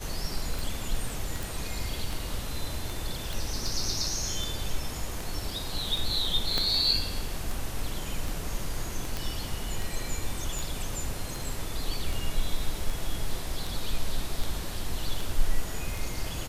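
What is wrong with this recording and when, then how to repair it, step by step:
tick 78 rpm
1.43 pop
3.33 pop
6.58 pop -12 dBFS
9.17 pop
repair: de-click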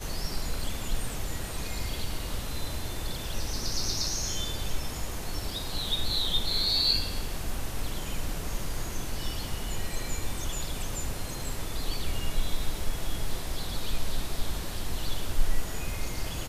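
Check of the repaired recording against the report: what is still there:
6.58 pop

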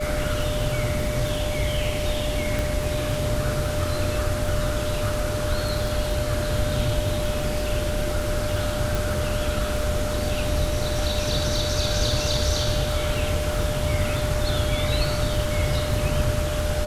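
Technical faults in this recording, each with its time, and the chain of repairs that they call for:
crackle 27/s -28 dBFS
tone 600 Hz -28 dBFS
2.59 pop
8.95 pop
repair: de-click; notch 600 Hz, Q 30

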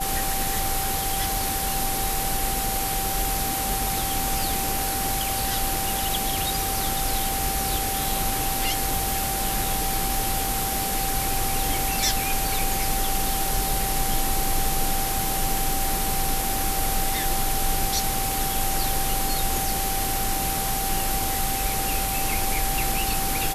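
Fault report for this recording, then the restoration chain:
tone 780 Hz -29 dBFS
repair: notch 780 Hz, Q 30

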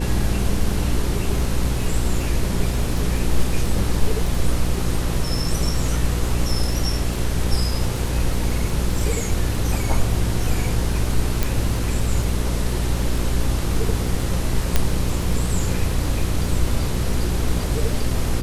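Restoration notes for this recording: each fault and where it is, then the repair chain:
crackle 24/s -26 dBFS
hum 60 Hz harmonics 8 -24 dBFS
11.43 pop
14.76 pop -2 dBFS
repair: de-click; de-hum 60 Hz, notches 8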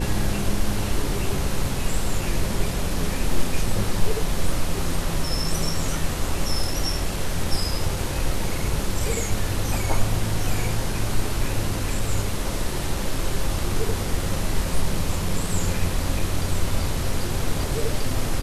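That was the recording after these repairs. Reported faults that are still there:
none

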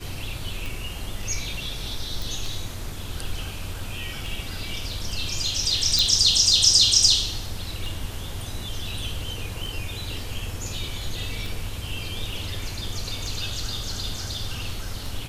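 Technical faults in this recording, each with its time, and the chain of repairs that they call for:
tick 33 1/3 rpm
2.22 pop
5.99 pop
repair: de-click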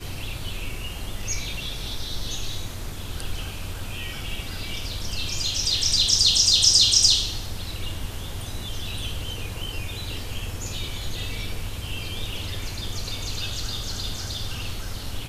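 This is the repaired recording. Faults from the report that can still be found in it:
none

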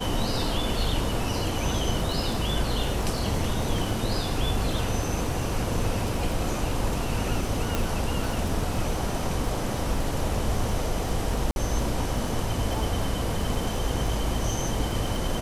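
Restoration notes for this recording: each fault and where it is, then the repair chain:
crackle 34/s -32 dBFS
7.75 pop
11.51–11.56 gap 51 ms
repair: de-click; interpolate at 11.51, 51 ms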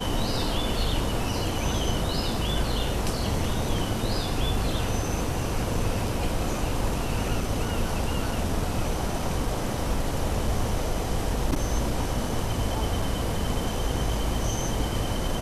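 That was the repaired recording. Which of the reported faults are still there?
7.75 pop

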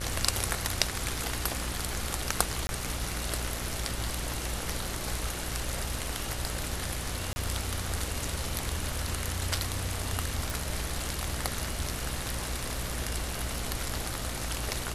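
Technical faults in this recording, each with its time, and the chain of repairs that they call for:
buzz 60 Hz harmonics 37 -38 dBFS
crackle 20/s -42 dBFS
2.67–2.69 gap 20 ms
7.33–7.36 gap 30 ms
10.5 pop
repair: de-click; de-hum 60 Hz, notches 37; interpolate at 2.67, 20 ms; interpolate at 7.33, 30 ms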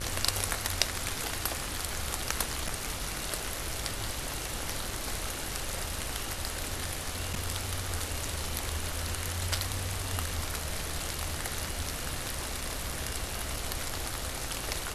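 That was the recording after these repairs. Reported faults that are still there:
none

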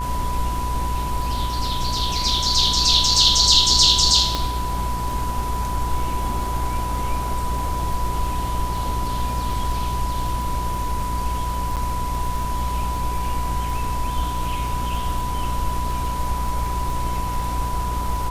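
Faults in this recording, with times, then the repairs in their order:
buzz 60 Hz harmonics 35 -27 dBFS
crackle 29/s -29 dBFS
tone 990 Hz -26 dBFS
4.35 pop -8 dBFS
11.76–11.77 gap 7.8 ms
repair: de-click; de-hum 60 Hz, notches 35; notch 990 Hz, Q 30; interpolate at 11.76, 7.8 ms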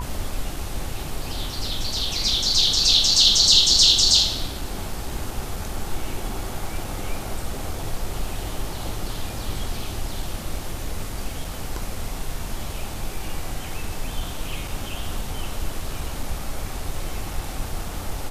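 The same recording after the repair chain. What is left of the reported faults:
none

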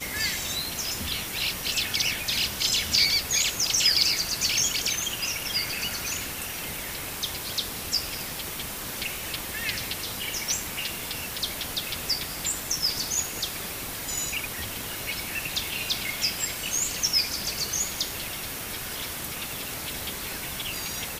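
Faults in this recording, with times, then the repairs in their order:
crackle 28/s -37 dBFS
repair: de-click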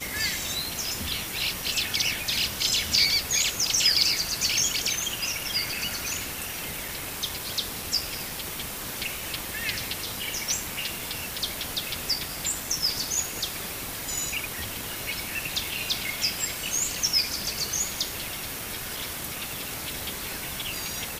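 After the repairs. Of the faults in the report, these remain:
none

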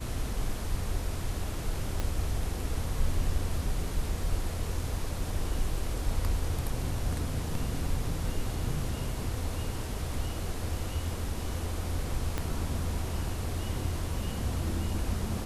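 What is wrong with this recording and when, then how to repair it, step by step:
2 pop -17 dBFS
12.38 pop -16 dBFS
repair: de-click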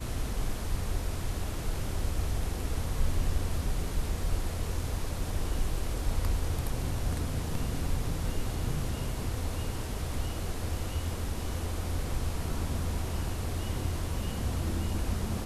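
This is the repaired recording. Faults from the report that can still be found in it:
2 pop
12.38 pop

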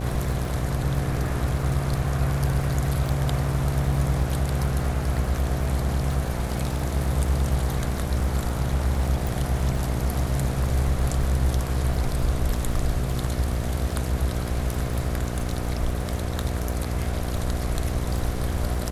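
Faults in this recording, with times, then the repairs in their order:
buzz 60 Hz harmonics 12 -29 dBFS
crackle 27/s -30 dBFS
9.27 pop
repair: de-click; de-hum 60 Hz, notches 12

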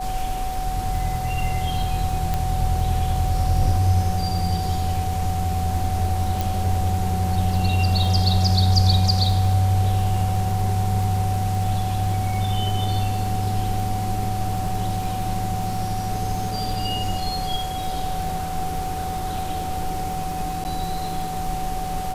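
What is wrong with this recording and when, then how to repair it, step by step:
crackle 37/s -29 dBFS
tone 750 Hz -27 dBFS
2.34 pop
6.41 pop
20.64–20.65 gap 9.5 ms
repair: de-click; notch 750 Hz, Q 30; interpolate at 20.64, 9.5 ms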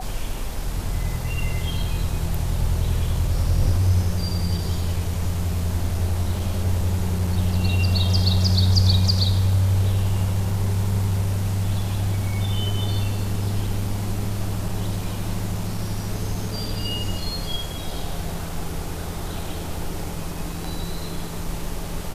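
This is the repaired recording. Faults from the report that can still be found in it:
2.34 pop

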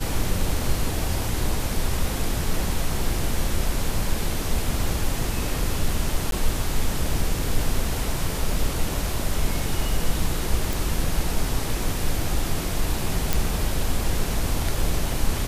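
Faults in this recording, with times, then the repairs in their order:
6.31–6.32 gap 12 ms
10.73 pop
13.33 pop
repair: de-click; interpolate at 6.31, 12 ms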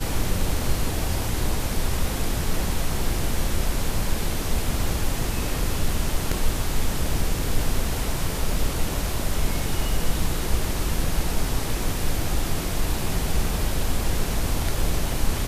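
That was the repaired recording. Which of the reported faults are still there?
none

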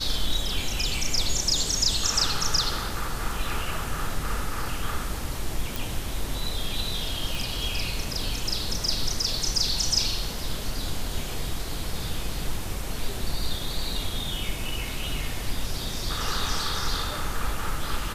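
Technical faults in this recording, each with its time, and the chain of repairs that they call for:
5.76 pop
7.35 pop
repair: de-click

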